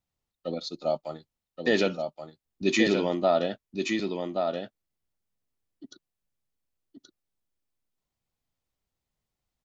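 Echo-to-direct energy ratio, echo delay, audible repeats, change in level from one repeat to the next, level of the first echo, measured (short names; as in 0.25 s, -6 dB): -5.0 dB, 1.126 s, 1, no steady repeat, -5.0 dB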